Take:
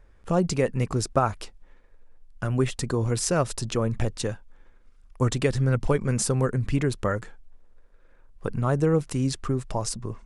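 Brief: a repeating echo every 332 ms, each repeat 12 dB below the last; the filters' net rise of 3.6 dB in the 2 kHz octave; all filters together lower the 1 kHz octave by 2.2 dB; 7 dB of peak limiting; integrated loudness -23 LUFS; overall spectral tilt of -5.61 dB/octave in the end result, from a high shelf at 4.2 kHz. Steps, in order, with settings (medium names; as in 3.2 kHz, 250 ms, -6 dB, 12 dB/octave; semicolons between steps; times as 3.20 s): peaking EQ 1 kHz -5.5 dB; peaking EQ 2 kHz +7.5 dB; treble shelf 4.2 kHz -3.5 dB; peak limiter -15.5 dBFS; feedback delay 332 ms, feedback 25%, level -12 dB; trim +5 dB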